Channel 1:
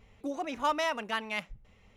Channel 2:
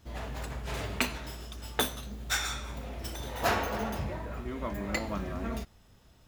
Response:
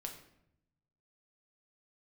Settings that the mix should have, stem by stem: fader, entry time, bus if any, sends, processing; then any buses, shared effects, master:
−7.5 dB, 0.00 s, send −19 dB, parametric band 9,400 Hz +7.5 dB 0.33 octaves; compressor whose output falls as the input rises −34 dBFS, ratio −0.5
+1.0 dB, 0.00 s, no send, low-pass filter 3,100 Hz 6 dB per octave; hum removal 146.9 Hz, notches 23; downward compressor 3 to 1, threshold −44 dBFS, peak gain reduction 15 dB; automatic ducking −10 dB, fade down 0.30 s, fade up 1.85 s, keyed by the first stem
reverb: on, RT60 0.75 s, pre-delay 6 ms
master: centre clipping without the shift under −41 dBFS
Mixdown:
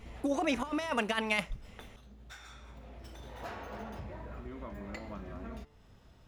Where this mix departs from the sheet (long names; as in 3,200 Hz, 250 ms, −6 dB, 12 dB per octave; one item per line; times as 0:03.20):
stem 1 −7.5 dB → +3.5 dB
master: missing centre clipping without the shift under −41 dBFS